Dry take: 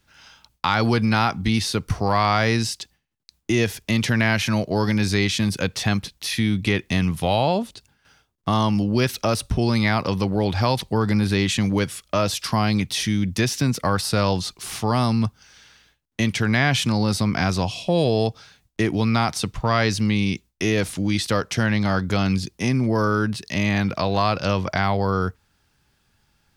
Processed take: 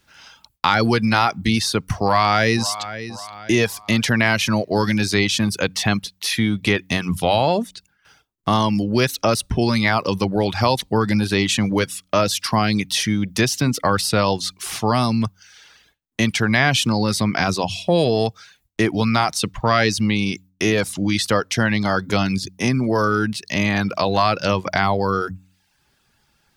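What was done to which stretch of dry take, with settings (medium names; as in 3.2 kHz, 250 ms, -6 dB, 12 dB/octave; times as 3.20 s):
2.03–2.80 s: echo throw 530 ms, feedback 45%, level -13 dB
whole clip: de-hum 92.88 Hz, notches 3; reverb removal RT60 0.56 s; bass shelf 130 Hz -6.5 dB; trim +4.5 dB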